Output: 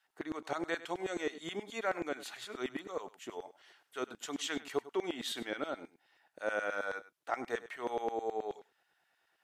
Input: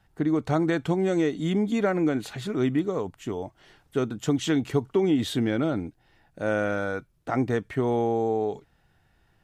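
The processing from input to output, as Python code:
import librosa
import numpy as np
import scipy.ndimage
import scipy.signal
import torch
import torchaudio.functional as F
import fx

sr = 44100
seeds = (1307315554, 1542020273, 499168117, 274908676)

y = x + 10.0 ** (-16.5 / 20.0) * np.pad(x, (int(99 * sr / 1000.0), 0))[:len(x)]
y = fx.filter_lfo_highpass(y, sr, shape='saw_down', hz=9.4, low_hz=370.0, high_hz=1900.0, q=0.78)
y = F.gain(torch.from_numpy(y), -5.0).numpy()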